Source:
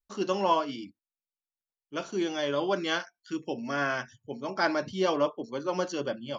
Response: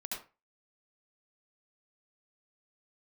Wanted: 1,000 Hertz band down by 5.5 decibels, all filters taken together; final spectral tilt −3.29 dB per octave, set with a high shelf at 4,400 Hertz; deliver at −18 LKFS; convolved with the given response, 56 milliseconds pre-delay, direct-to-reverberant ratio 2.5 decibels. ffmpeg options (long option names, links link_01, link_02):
-filter_complex "[0:a]equalizer=frequency=1000:width_type=o:gain=-6.5,highshelf=frequency=4400:gain=-5,asplit=2[link_01][link_02];[1:a]atrim=start_sample=2205,adelay=56[link_03];[link_02][link_03]afir=irnorm=-1:irlink=0,volume=-3dB[link_04];[link_01][link_04]amix=inputs=2:normalize=0,volume=13dB"